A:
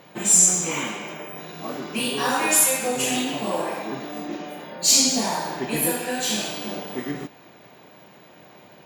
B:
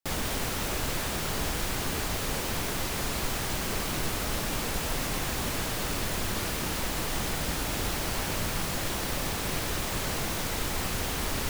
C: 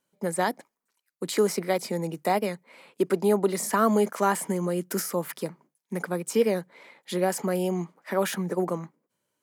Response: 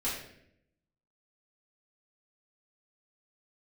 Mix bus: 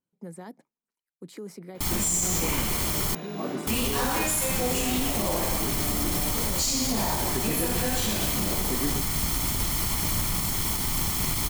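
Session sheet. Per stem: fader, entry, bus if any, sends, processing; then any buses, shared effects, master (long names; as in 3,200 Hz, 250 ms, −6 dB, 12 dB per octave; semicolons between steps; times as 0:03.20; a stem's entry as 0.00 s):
−3.5 dB, 1.75 s, no send, no processing
−0.5 dB, 1.75 s, muted 0:03.15–0:03.67, no send, lower of the sound and its delayed copy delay 0.92 ms; high-shelf EQ 5,300 Hz +11.5 dB
−16.5 dB, 0.00 s, no send, low-shelf EQ 320 Hz +9 dB; notch filter 590 Hz, Q 12; brickwall limiter −18.5 dBFS, peak gain reduction 11 dB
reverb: not used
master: low-shelf EQ 470 Hz +6 dB; brickwall limiter −16 dBFS, peak gain reduction 9.5 dB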